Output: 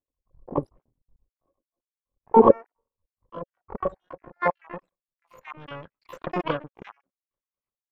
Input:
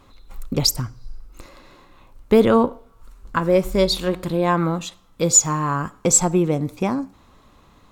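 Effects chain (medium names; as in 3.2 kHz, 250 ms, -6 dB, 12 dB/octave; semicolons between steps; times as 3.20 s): random holes in the spectrogram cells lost 62%; peaking EQ 550 Hz +15 dB 0.22 oct; power-law waveshaper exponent 2; low-pass sweep 360 Hz -> 1.5 kHz, 2.17–5.94 s; harmony voices -3 st -16 dB, +12 st -3 dB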